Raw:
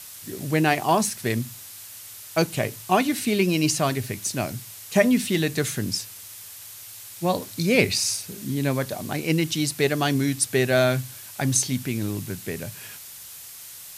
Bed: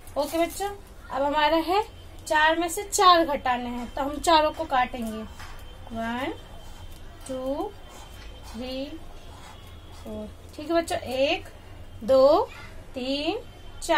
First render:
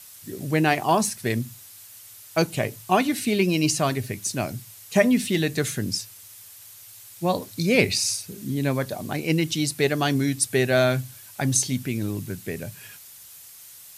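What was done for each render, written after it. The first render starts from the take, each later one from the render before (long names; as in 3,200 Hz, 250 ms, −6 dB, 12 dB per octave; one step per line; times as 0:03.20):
broadband denoise 6 dB, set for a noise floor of −42 dBFS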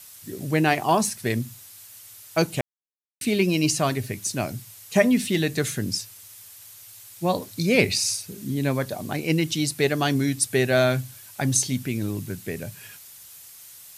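0:02.61–0:03.21: silence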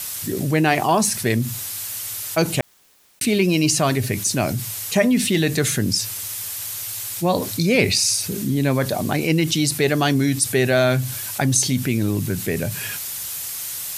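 envelope flattener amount 50%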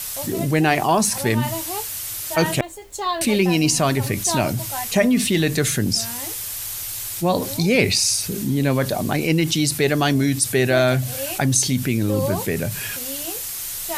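mix in bed −7.5 dB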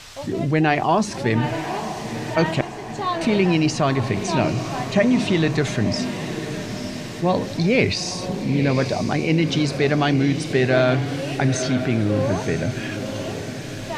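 high-frequency loss of the air 150 metres
feedback delay with all-pass diffusion 924 ms, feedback 57%, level −9 dB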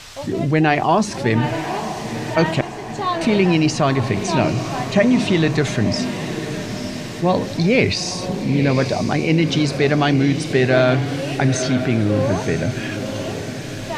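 level +2.5 dB
brickwall limiter −3 dBFS, peak gain reduction 1.5 dB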